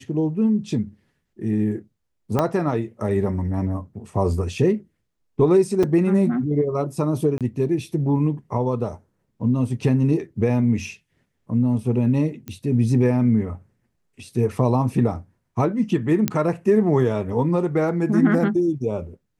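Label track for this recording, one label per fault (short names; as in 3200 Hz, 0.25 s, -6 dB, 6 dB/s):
2.390000	2.390000	pop -8 dBFS
5.830000	5.830000	gap 4.7 ms
7.380000	7.410000	gap 27 ms
12.480000	12.480000	pop -19 dBFS
16.280000	16.280000	pop -5 dBFS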